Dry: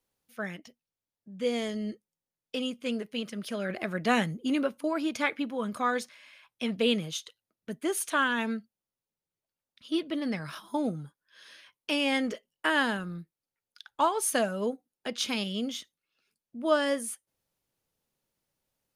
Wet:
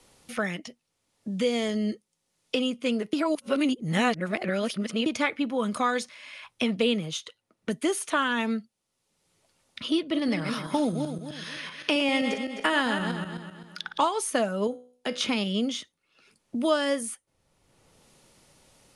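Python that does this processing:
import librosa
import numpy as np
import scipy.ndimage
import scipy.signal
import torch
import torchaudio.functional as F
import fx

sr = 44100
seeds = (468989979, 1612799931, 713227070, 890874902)

y = fx.reverse_delay_fb(x, sr, ms=129, feedback_pct=43, wet_db=-7, at=(10.02, 14.08))
y = fx.comb_fb(y, sr, f0_hz=62.0, decay_s=0.42, harmonics='all', damping=0.0, mix_pct=60, at=(14.67, 15.21))
y = fx.edit(y, sr, fx.reverse_span(start_s=3.13, length_s=1.93), tone=tone)
y = scipy.signal.sosfilt(scipy.signal.butter(8, 11000.0, 'lowpass', fs=sr, output='sos'), y)
y = fx.notch(y, sr, hz=1600.0, q=14.0)
y = fx.band_squash(y, sr, depth_pct=70)
y = y * 10.0 ** (3.5 / 20.0)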